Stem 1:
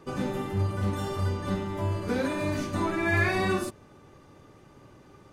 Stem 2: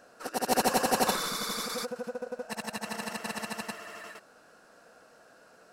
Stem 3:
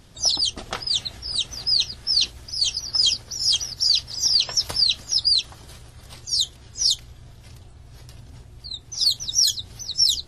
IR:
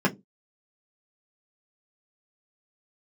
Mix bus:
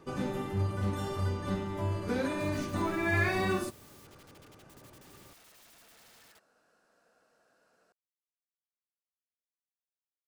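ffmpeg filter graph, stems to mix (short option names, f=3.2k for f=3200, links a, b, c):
-filter_complex "[0:a]volume=-3.5dB[a];[1:a]acompressor=threshold=-34dB:ratio=3,aeval=exprs='(mod(106*val(0)+1,2)-1)/106':c=same,adelay=2200,volume=-13dB[b];[a][b]amix=inputs=2:normalize=0"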